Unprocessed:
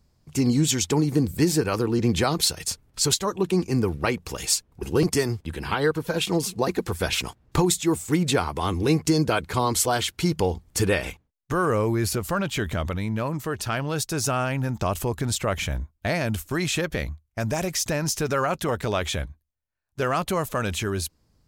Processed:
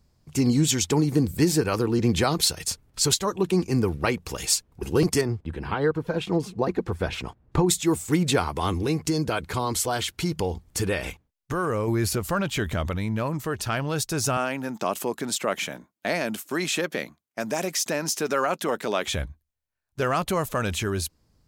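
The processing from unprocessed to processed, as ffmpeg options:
-filter_complex "[0:a]asettb=1/sr,asplit=3[s0][s1][s2];[s0]atrim=end=5.214[s3];[s1]atrim=start=5.21:end=7.69,asetpts=PTS-STARTPTS,afade=t=in:d=0.004:c=qsin,afade=t=out:st=2.476:d=0.004:c=qsin,lowpass=f=1300:p=1[s4];[s2]atrim=start=7.686[s5];[s3][s4]acrossfade=d=0.004:c1=hsin:c2=qsin[s6];[s6][s5]acrossfade=d=0.004:c1=qsin:c2=hsin,asettb=1/sr,asplit=3[s7][s8][s9];[s7]atrim=end=8.784[s10];[s8]atrim=start=8.78:end=11.88,asetpts=PTS-STARTPTS,afade=t=in:d=0.004:c=qsin,afade=t=out:st=3.096:d=0.004:c=qsin,acompressor=threshold=0.0447:ratio=1.5:attack=3.2:release=140:knee=1:detection=peak[s11];[s9]atrim=start=11.876[s12];[s10][s11]acrossfade=d=0.004:c1=hsin:c2=qsin[s13];[s13][s12]acrossfade=d=0.004:c1=qsin:c2=hsin,asettb=1/sr,asplit=3[s14][s15][s16];[s14]atrim=end=14.374[s17];[s15]atrim=start=14.37:end=19.08,asetpts=PTS-STARTPTS,afade=t=in:d=0.004:c=qsin,afade=t=out:st=4.706:d=0.004:c=qsin,highpass=f=200:w=0.5412,highpass=f=200:w=1.3066[s18];[s16]atrim=start=19.076[s19];[s17][s18]acrossfade=d=0.004:c1=hsin:c2=qsin[s20];[s20][s19]acrossfade=d=0.004:c1=qsin:c2=hsin"

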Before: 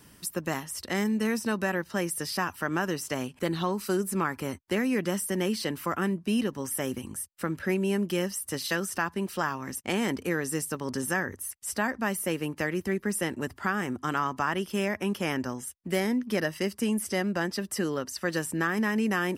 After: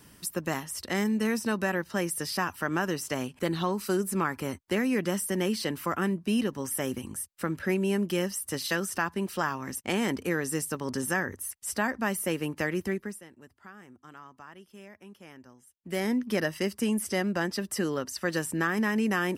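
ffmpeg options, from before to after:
-filter_complex "[0:a]asplit=3[s0][s1][s2];[s0]atrim=end=13.21,asetpts=PTS-STARTPTS,afade=t=out:st=12.85:d=0.36:silence=0.1[s3];[s1]atrim=start=13.21:end=15.74,asetpts=PTS-STARTPTS,volume=0.1[s4];[s2]atrim=start=15.74,asetpts=PTS-STARTPTS,afade=t=in:d=0.36:silence=0.1[s5];[s3][s4][s5]concat=n=3:v=0:a=1"

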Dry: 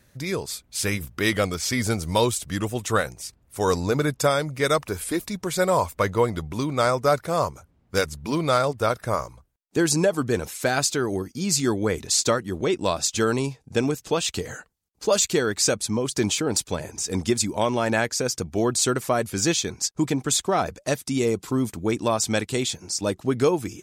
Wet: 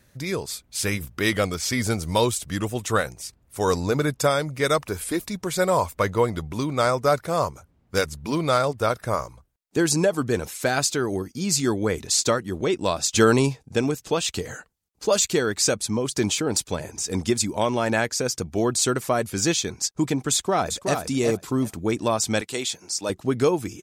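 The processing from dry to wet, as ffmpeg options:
-filter_complex "[0:a]asplit=2[s0][s1];[s1]afade=t=in:st=20.33:d=0.01,afade=t=out:st=20.99:d=0.01,aecho=0:1:370|740|1110:0.501187|0.0751781|0.0112767[s2];[s0][s2]amix=inputs=2:normalize=0,asettb=1/sr,asplit=3[s3][s4][s5];[s3]atrim=end=22.414[s6];[s4]atrim=start=22.41:end=23.1,asetpts=PTS-STARTPTS,afade=t=in:d=0.004:c=qsin,afade=t=out:st=0.686:d=0.004:c=qsin,highpass=f=480:p=1[s7];[s5]atrim=start=23.096[s8];[s6][s7]acrossfade=d=0.004:c1=hsin:c2=qsin[s9];[s9][s8]acrossfade=d=0.004:c1=qsin:c2=hsin,asplit=3[s10][s11][s12];[s10]atrim=end=13.132[s13];[s11]atrim=start=13.128:end=13.632,asetpts=PTS-STARTPTS,volume=1.88[s14];[s12]atrim=start=13.628[s15];[s13][s14]acrossfade=d=0.004:c1=hsin:c2=hsin[s16];[s16][s15]acrossfade=d=0.004:c1=hsin:c2=hsin"

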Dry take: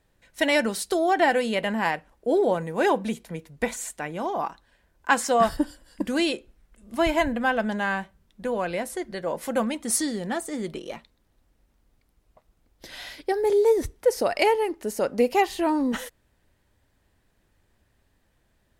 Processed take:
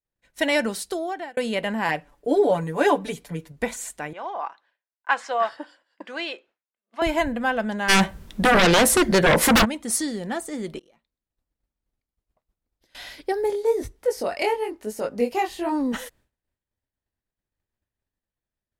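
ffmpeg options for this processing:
-filter_complex "[0:a]asettb=1/sr,asplit=3[s0][s1][s2];[s0]atrim=end=1.884[s3];[s1]atrim=start=1.88:end=3.52,asetpts=PTS-STARTPTS,afade=t=in:d=0.004:c=qsin,afade=t=out:st=1.636:d=0.004:c=qsin,aecho=1:1:6.9:0.91,atrim=end_sample=72324[s4];[s2]atrim=start=3.516[s5];[s3][s4]acrossfade=d=0.004:c1=hsin:c2=qsin[s6];[s6][s5]acrossfade=d=0.004:c1=qsin:c2=hsin,asettb=1/sr,asplit=3[s7][s8][s9];[s7]atrim=end=4.134[s10];[s8]atrim=start=4.13:end=7.02,asetpts=PTS-STARTPTS,afade=t=in:d=0.004:c=qsin,afade=t=out:st=2.886:d=0.004:c=qsin,highpass=690,lowpass=3200[s11];[s9]atrim=start=7.016[s12];[s10][s11]acrossfade=d=0.004:c1=hsin:c2=qsin[s13];[s13][s12]acrossfade=d=0.004:c1=qsin:c2=hsin,asplit=3[s14][s15][s16];[s14]afade=t=out:st=7.88:d=0.02[s17];[s15]aeval=exprs='0.237*sin(PI/2*6.31*val(0)/0.237)':c=same,afade=t=in:st=7.88:d=0.02,afade=t=out:st=9.64:d=0.02[s18];[s16]afade=t=in:st=9.64:d=0.02[s19];[s17][s18][s19]amix=inputs=3:normalize=0,asettb=1/sr,asplit=3[s20][s21][s22];[s20]atrim=end=10.794[s23];[s21]atrim=start=10.79:end=12.95,asetpts=PTS-STARTPTS,afade=t=in:d=0.004:c=qsin,afade=t=out:st=2.156:d=0.004:c=qsin,acompressor=threshold=0.00178:ratio=16:attack=3.2:release=140:knee=1:detection=peak[s24];[s22]atrim=start=12.946[s25];[s23][s24]acrossfade=d=0.004:c1=hsin:c2=qsin[s26];[s26][s25]acrossfade=d=0.004:c1=qsin:c2=hsin,asplit=3[s27][s28][s29];[s27]afade=t=out:st=13.46:d=0.02[s30];[s28]flanger=delay=18:depth=6:speed=1,afade=t=in:st=13.46:d=0.02,afade=t=out:st=15.71:d=0.02[s31];[s29]afade=t=in:st=15.71:d=0.02[s32];[s30][s31][s32]amix=inputs=3:normalize=0,asplit=2[s33][s34];[s33]atrim=end=1.37,asetpts=PTS-STARTPTS,afade=t=out:st=0.7:d=0.67[s35];[s34]atrim=start=1.37,asetpts=PTS-STARTPTS,afade=t=in:d=0.004:c=hsin[s36];[s35][s36]concat=n=2:v=0:a=1,agate=range=0.0224:threshold=0.00251:ratio=3:detection=peak"

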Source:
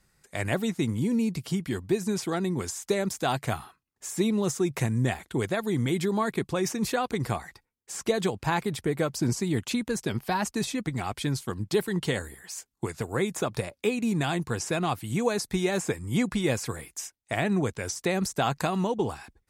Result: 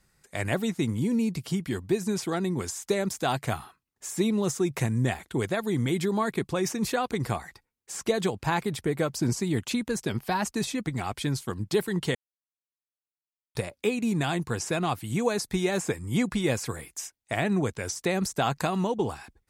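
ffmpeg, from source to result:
-filter_complex "[0:a]asplit=3[s0][s1][s2];[s0]atrim=end=12.15,asetpts=PTS-STARTPTS,afade=t=out:st=12.146:d=0.004:c=hsin[s3];[s1]atrim=start=12.15:end=13.55,asetpts=PTS-STARTPTS,volume=0[s4];[s2]atrim=start=13.55,asetpts=PTS-STARTPTS,afade=t=in:d=0.004:c=hsin[s5];[s3][s4][s5]concat=n=3:v=0:a=1"

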